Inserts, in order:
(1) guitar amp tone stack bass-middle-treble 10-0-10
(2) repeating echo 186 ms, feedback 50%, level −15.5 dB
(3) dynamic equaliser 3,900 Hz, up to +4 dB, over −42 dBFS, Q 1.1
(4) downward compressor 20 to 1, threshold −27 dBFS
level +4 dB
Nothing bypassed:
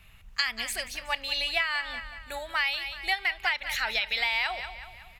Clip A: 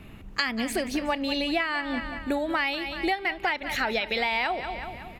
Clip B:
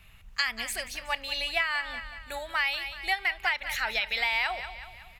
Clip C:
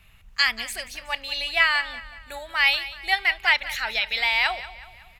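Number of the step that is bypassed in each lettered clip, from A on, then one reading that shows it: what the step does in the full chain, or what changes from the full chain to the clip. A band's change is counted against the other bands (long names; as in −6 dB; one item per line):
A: 1, 250 Hz band +24.0 dB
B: 3, 4 kHz band −2.5 dB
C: 4, average gain reduction 2.5 dB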